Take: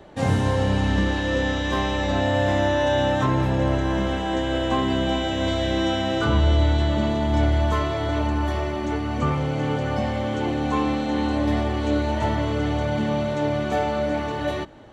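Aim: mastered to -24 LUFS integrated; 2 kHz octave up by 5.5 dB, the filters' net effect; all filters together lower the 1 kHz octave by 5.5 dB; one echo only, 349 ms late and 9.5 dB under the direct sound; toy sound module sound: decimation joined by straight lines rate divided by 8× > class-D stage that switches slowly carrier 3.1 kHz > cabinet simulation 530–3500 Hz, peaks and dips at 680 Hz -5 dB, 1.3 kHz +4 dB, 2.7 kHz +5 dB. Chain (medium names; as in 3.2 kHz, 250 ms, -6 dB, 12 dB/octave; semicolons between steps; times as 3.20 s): peaking EQ 1 kHz -8 dB; peaking EQ 2 kHz +8 dB; delay 349 ms -9.5 dB; decimation joined by straight lines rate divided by 8×; class-D stage that switches slowly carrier 3.1 kHz; cabinet simulation 530–3500 Hz, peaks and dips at 680 Hz -5 dB, 1.3 kHz +4 dB, 2.7 kHz +5 dB; trim +3.5 dB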